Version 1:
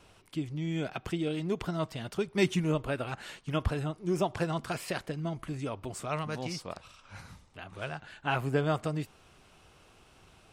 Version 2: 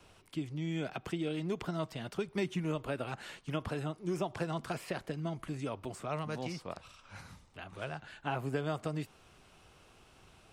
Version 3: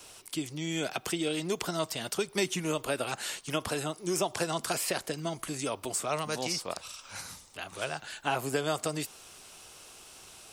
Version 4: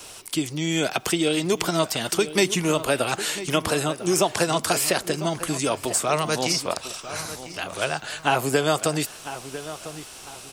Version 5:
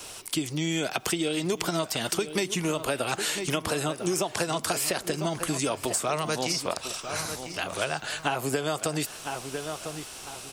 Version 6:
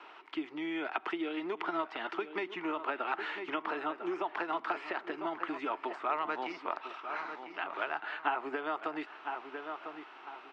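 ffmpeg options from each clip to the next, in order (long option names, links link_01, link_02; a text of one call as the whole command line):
ffmpeg -i in.wav -filter_complex "[0:a]acrossover=split=120|960|3000[link_01][link_02][link_03][link_04];[link_01]acompressor=threshold=-53dB:ratio=4[link_05];[link_02]acompressor=threshold=-30dB:ratio=4[link_06];[link_03]acompressor=threshold=-42dB:ratio=4[link_07];[link_04]acompressor=threshold=-50dB:ratio=4[link_08];[link_05][link_06][link_07][link_08]amix=inputs=4:normalize=0,volume=-1.5dB" out.wav
ffmpeg -i in.wav -af "bass=frequency=250:gain=-9,treble=frequency=4000:gain=15,volume=6dB" out.wav
ffmpeg -i in.wav -filter_complex "[0:a]asplit=2[link_01][link_02];[link_02]adelay=999,lowpass=frequency=3000:poles=1,volume=-13dB,asplit=2[link_03][link_04];[link_04]adelay=999,lowpass=frequency=3000:poles=1,volume=0.34,asplit=2[link_05][link_06];[link_06]adelay=999,lowpass=frequency=3000:poles=1,volume=0.34[link_07];[link_01][link_03][link_05][link_07]amix=inputs=4:normalize=0,volume=9dB" out.wav
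ffmpeg -i in.wav -af "acompressor=threshold=-24dB:ratio=6" out.wav
ffmpeg -i in.wav -af "highpass=frequency=300:width=0.5412,highpass=frequency=300:width=1.3066,equalizer=frequency=320:width_type=q:width=4:gain=4,equalizer=frequency=520:width_type=q:width=4:gain=-8,equalizer=frequency=910:width_type=q:width=4:gain=8,equalizer=frequency=1300:width_type=q:width=4:gain=7,equalizer=frequency=1900:width_type=q:width=4:gain=4,lowpass=frequency=2700:width=0.5412,lowpass=frequency=2700:width=1.3066,volume=-7.5dB" out.wav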